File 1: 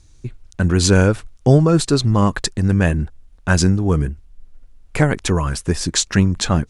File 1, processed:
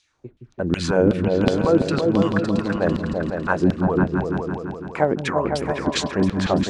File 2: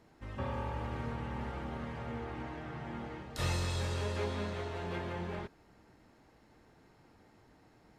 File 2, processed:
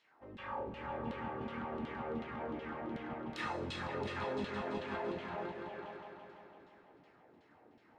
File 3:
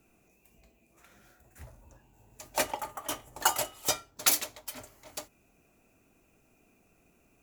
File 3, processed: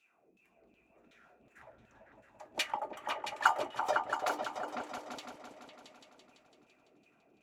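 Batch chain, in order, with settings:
LFO band-pass saw down 2.7 Hz 220–3500 Hz; delay with an opening low-pass 168 ms, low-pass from 200 Hz, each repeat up 2 oct, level 0 dB; trim +5 dB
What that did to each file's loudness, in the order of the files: -4.0 LU, -2.5 LU, -4.5 LU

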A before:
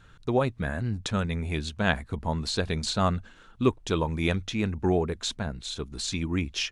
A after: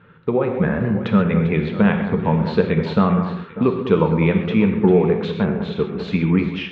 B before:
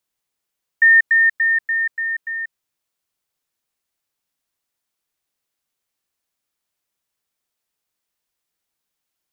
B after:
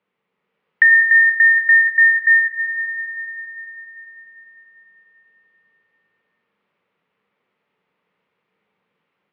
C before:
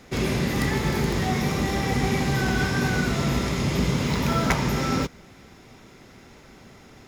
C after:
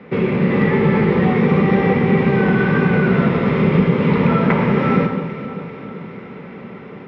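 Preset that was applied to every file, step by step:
compression 6:1, threshold -25 dBFS; cabinet simulation 160–2400 Hz, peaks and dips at 180 Hz +10 dB, 310 Hz -4 dB, 470 Hz +7 dB, 690 Hz -7 dB, 1.6 kHz -5 dB; echo whose repeats swap between lows and highs 198 ms, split 1.7 kHz, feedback 74%, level -10 dB; gated-style reverb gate 160 ms flat, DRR 5 dB; level rider gain up to 3.5 dB; peak normalisation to -2 dBFS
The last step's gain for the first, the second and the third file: +8.0 dB, +12.0 dB, +9.0 dB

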